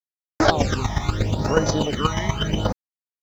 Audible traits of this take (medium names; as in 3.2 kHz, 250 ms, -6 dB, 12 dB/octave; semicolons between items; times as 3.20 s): phasing stages 12, 0.79 Hz, lowest notch 450–3500 Hz; a quantiser's noise floor 10-bit, dither none; chopped level 8.3 Hz, depth 60%, duty 15%